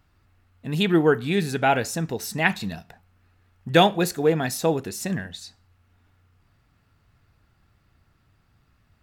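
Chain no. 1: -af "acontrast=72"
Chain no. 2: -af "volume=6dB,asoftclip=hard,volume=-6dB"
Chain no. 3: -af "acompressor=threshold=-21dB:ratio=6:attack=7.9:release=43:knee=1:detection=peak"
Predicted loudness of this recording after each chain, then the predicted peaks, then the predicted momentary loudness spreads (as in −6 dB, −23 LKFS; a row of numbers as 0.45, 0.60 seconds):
−17.0, −23.0, −26.5 LKFS; −1.5, −6.0, −9.0 dBFS; 16, 17, 15 LU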